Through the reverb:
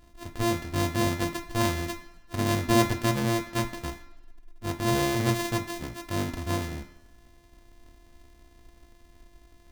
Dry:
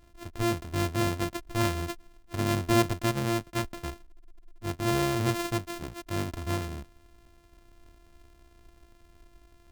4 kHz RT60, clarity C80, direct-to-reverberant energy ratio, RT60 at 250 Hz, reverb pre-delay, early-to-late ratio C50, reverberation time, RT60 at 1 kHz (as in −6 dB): 0.95 s, 15.0 dB, 4.5 dB, 0.85 s, 3 ms, 12.5 dB, 1.0 s, 1.0 s